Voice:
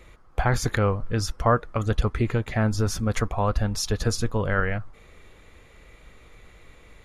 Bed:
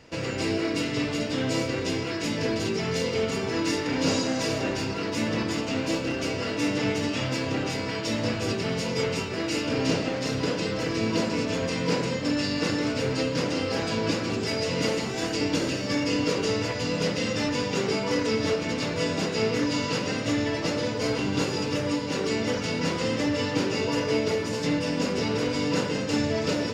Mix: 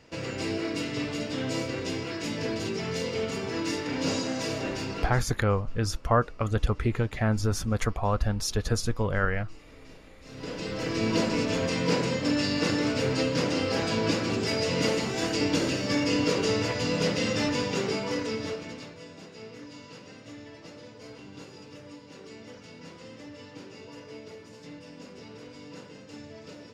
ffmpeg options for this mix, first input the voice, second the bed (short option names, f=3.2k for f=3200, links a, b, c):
-filter_complex "[0:a]adelay=4650,volume=-2.5dB[a];[1:a]volume=23.5dB,afade=t=out:st=4.98:d=0.25:silence=0.0668344,afade=t=in:st=10.22:d=0.9:silence=0.0421697,afade=t=out:st=17.4:d=1.59:silence=0.112202[b];[a][b]amix=inputs=2:normalize=0"